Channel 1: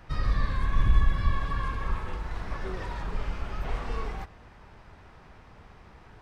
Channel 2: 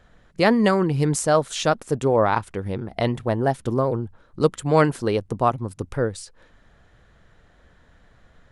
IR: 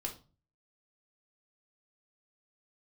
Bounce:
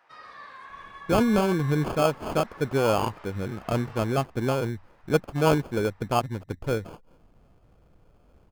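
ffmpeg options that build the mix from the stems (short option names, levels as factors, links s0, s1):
-filter_complex "[0:a]highpass=800,volume=0.75[s0];[1:a]acrusher=samples=23:mix=1:aa=0.000001,adelay=700,volume=0.708[s1];[s0][s1]amix=inputs=2:normalize=0,highshelf=f=2100:g=-9.5"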